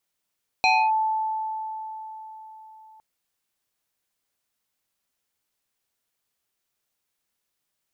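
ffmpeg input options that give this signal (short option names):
-f lavfi -i "aevalsrc='0.178*pow(10,-3*t/4.28)*sin(2*PI*875*t+1.8*clip(1-t/0.27,0,1)*sin(2*PI*1.86*875*t))':d=2.36:s=44100"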